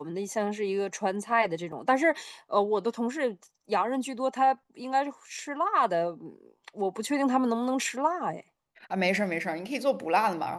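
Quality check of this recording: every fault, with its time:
1.72 s: dropout 4.2 ms

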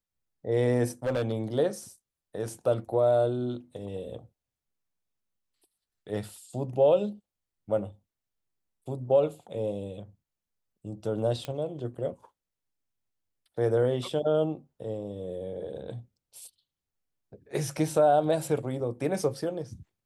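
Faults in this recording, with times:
1.05–1.32 s: clipped -23.5 dBFS
11.45 s: pop -20 dBFS

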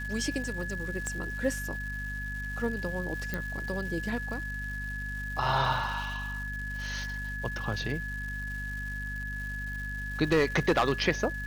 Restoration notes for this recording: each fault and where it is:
crackle 470 per s -40 dBFS
hum 50 Hz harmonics 5 -38 dBFS
whine 1.7 kHz -36 dBFS
1.07 s: pop -21 dBFS
3.34 s: pop -18 dBFS
10.32–10.92 s: clipped -18.5 dBFS

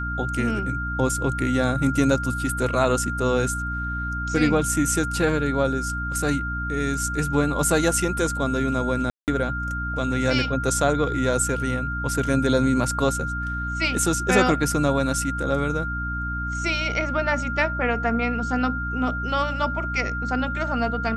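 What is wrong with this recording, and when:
hum 60 Hz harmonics 5 -30 dBFS
whine 1.4 kHz -28 dBFS
9.10–9.28 s: dropout 178 ms

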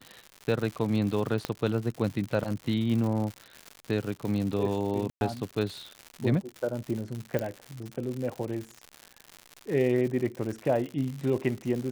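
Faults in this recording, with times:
crackle 160 per s -33 dBFS
1.45 s: pop -14 dBFS
5.10–5.21 s: dropout 111 ms
7.39 s: pop -16 dBFS

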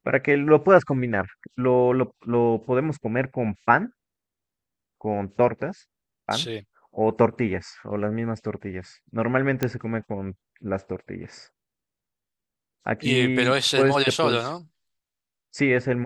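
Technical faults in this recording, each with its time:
9.63 s: pop -9 dBFS

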